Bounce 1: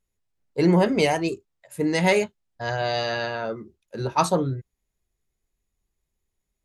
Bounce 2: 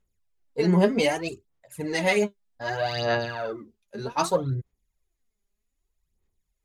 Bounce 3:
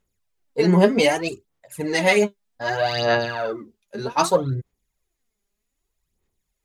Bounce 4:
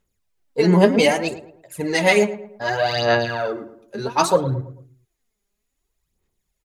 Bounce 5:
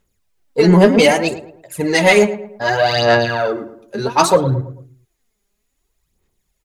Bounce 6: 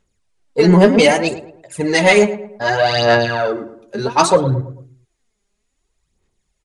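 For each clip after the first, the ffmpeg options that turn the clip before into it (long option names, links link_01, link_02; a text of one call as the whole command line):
ffmpeg -i in.wav -af "aphaser=in_gain=1:out_gain=1:delay=5:decay=0.66:speed=0.64:type=sinusoidal,volume=-4.5dB" out.wav
ffmpeg -i in.wav -af "lowshelf=frequency=100:gain=-8,volume=5.5dB" out.wav
ffmpeg -i in.wav -filter_complex "[0:a]asplit=2[link_01][link_02];[link_02]adelay=110,lowpass=frequency=1600:poles=1,volume=-13dB,asplit=2[link_03][link_04];[link_04]adelay=110,lowpass=frequency=1600:poles=1,volume=0.42,asplit=2[link_05][link_06];[link_06]adelay=110,lowpass=frequency=1600:poles=1,volume=0.42,asplit=2[link_07][link_08];[link_08]adelay=110,lowpass=frequency=1600:poles=1,volume=0.42[link_09];[link_01][link_03][link_05][link_07][link_09]amix=inputs=5:normalize=0,volume=1.5dB" out.wav
ffmpeg -i in.wav -af "asoftclip=type=tanh:threshold=-7dB,volume=6dB" out.wav
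ffmpeg -i in.wav -af "aresample=22050,aresample=44100" out.wav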